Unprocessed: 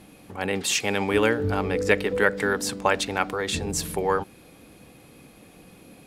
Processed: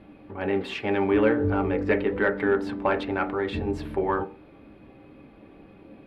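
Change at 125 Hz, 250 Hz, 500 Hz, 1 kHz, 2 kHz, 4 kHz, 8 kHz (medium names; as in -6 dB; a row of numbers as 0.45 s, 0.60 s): -0.5 dB, +3.0 dB, 0.0 dB, -2.0 dB, -4.0 dB, -11.5 dB, under -25 dB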